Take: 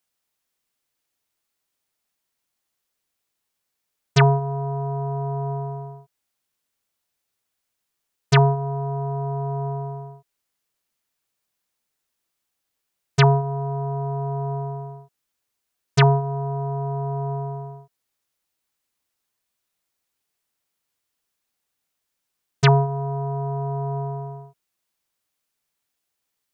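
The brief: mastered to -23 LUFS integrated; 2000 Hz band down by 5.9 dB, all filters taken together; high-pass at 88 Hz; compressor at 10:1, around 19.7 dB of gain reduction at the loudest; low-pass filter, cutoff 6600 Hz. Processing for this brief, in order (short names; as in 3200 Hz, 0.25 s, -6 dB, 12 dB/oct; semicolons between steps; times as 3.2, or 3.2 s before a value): HPF 88 Hz; LPF 6600 Hz; bell 2000 Hz -8 dB; compressor 10:1, threshold -31 dBFS; gain +14 dB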